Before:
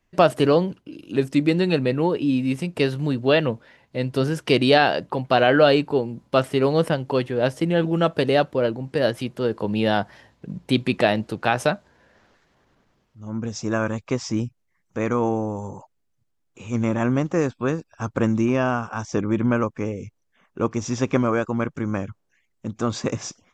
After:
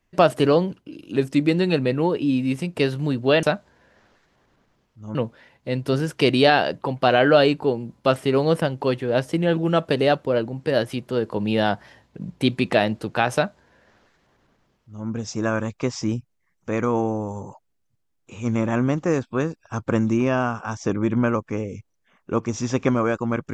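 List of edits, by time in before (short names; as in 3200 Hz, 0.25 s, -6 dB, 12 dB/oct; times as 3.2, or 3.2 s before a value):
11.62–13.34 copy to 3.43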